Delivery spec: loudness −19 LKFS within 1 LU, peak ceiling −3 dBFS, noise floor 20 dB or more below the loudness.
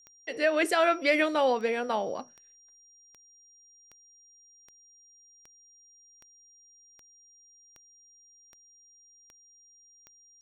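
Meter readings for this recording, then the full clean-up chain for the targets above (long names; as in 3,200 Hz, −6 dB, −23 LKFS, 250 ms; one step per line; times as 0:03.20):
number of clicks 14; interfering tone 5,700 Hz; level of the tone −56 dBFS; integrated loudness −26.5 LKFS; sample peak −11.5 dBFS; target loudness −19.0 LKFS
→ click removal
notch filter 5,700 Hz, Q 30
level +7.5 dB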